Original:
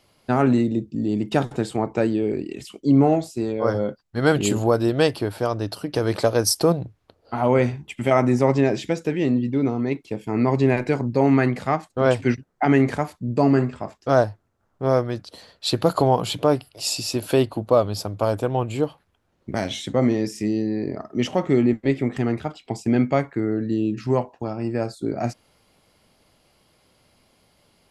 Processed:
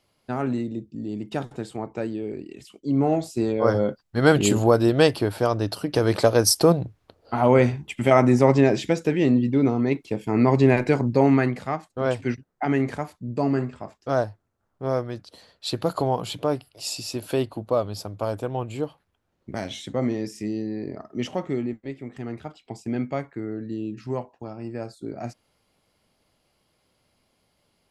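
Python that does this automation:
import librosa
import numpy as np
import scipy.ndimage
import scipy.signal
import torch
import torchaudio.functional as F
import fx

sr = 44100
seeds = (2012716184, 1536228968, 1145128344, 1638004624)

y = fx.gain(x, sr, db=fx.line((2.86, -8.0), (3.36, 1.5), (11.13, 1.5), (11.69, -5.5), (21.34, -5.5), (21.97, -14.5), (22.45, -8.0)))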